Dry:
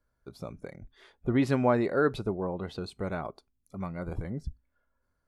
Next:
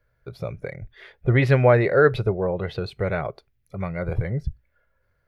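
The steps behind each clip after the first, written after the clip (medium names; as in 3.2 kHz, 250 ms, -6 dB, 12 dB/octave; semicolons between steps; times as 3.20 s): graphic EQ 125/250/500/1000/2000/8000 Hz +9/-12/+7/-6/+9/-12 dB; trim +7 dB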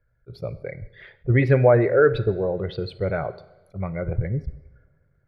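resonances exaggerated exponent 1.5; two-slope reverb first 0.9 s, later 3 s, from -20 dB, DRR 13.5 dB; attacks held to a fixed rise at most 550 dB/s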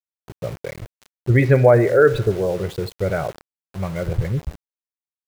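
small samples zeroed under -35.5 dBFS; trim +3 dB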